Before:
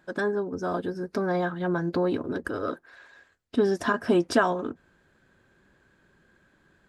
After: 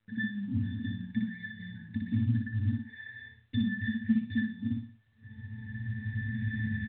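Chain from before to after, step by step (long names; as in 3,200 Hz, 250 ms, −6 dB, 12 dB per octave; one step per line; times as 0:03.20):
camcorder AGC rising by 13 dB per second
linear-phase brick-wall band-stop 300–1,500 Hz
parametric band 2,000 Hz +11 dB 1.6 octaves
far-end echo of a speakerphone 100 ms, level −21 dB
in parallel at −8 dB: slack as between gear wheels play −39.5 dBFS
on the sum: downward compressor 5 to 1, threshold −27 dBFS, peak gain reduction 13 dB
noise gate −48 dBFS, range −27 dB
parametric band 100 Hz +13.5 dB 1.5 octaves
resonances in every octave A, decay 0.29 s
repeating echo 60 ms, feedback 34%, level −3 dB
level +9 dB
mu-law 64 kbit/s 8,000 Hz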